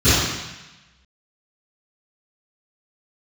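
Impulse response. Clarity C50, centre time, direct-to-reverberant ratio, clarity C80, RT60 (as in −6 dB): −3.5 dB, 101 ms, −20.0 dB, 0.5 dB, 1.0 s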